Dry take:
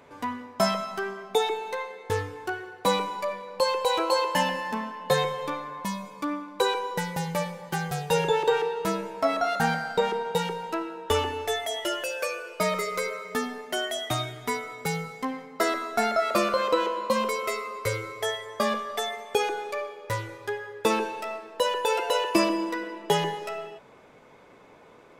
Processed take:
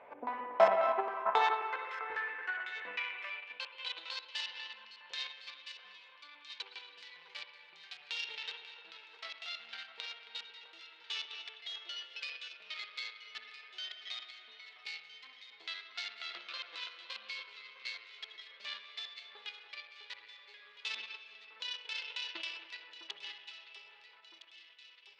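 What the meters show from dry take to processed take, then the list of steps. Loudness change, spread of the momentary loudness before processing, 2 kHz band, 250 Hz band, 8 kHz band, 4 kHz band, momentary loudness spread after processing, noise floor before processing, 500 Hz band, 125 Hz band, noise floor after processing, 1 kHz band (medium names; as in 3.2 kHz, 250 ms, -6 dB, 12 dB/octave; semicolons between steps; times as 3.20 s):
-11.0 dB, 9 LU, -9.0 dB, under -25 dB, -22.0 dB, -7.5 dB, 16 LU, -52 dBFS, -14.0 dB, under -35 dB, -59 dBFS, -11.5 dB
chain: LFO low-pass square 3.7 Hz 360–2500 Hz; hum 60 Hz, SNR 24 dB; spring tank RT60 2.3 s, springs 55/59 ms, chirp 70 ms, DRR 3 dB; Chebyshev shaper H 3 -15 dB, 6 -23 dB, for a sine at -5.5 dBFS; on a send: echo whose repeats swap between lows and highs 656 ms, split 1.6 kHz, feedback 66%, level -8 dB; on the sum: high-pass sweep 660 Hz -> 4 kHz, 0.54–4.24 s; tilt EQ -2.5 dB/octave; in parallel at -0.5 dB: level held to a coarse grid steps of 16 dB; on the sum: trim -3.5 dB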